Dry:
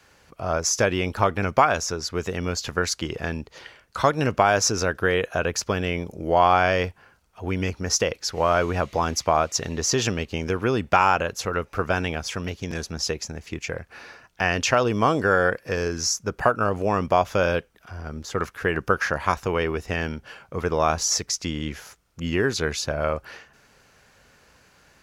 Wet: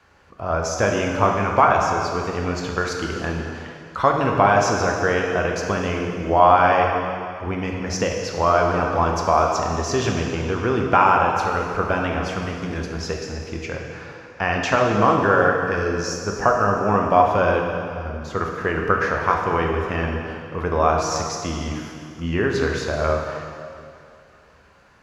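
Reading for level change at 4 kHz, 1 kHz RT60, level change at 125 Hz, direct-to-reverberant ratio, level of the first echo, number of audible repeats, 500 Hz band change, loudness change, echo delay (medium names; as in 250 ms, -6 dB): -3.5 dB, 2.4 s, +3.0 dB, 0.0 dB, no echo, no echo, +3.5 dB, +3.0 dB, no echo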